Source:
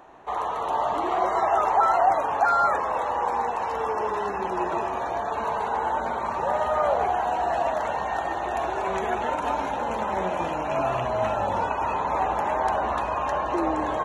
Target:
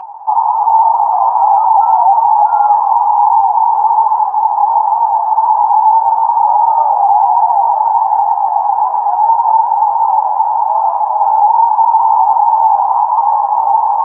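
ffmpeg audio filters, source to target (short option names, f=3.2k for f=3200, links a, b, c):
-filter_complex "[0:a]asplit=2[a][b];[b]asoftclip=type=tanh:threshold=-17dB,volume=-8dB[c];[a][c]amix=inputs=2:normalize=0,asuperpass=centerf=870:order=4:qfactor=6.2,acompressor=mode=upward:threshold=-42dB:ratio=2.5,flanger=delay=5.2:depth=3.9:regen=34:speed=1.2:shape=triangular,alimiter=level_in=24dB:limit=-1dB:release=50:level=0:latency=1,volume=-1dB"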